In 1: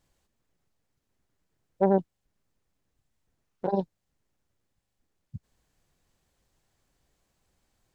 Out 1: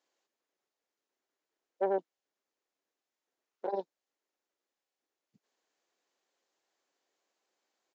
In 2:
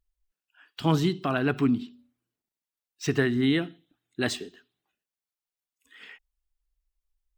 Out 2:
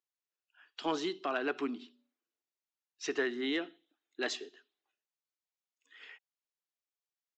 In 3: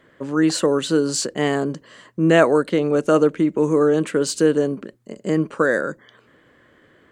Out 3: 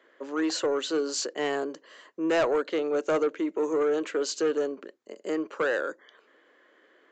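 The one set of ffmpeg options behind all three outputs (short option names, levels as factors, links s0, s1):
-af "highpass=f=330:w=0.5412,highpass=f=330:w=1.3066,aresample=16000,asoftclip=type=tanh:threshold=0.2,aresample=44100,volume=0.562"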